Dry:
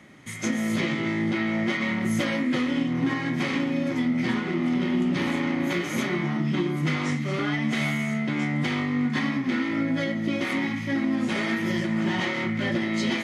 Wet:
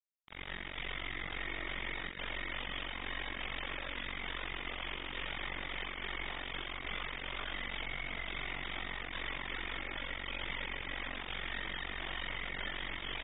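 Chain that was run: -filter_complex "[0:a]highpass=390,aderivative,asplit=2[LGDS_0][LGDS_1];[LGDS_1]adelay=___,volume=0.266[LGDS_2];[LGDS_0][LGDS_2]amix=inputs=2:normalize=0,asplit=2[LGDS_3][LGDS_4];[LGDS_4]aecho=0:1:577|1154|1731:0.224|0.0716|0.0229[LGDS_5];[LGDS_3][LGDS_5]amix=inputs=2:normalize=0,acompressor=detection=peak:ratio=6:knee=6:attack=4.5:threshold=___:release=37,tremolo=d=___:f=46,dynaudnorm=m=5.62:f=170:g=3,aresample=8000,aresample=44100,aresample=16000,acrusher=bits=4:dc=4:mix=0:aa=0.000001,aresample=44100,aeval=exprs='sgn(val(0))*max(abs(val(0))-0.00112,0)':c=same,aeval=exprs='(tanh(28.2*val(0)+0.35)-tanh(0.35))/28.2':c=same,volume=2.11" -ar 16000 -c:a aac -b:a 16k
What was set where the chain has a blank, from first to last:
30, 0.00398, 0.974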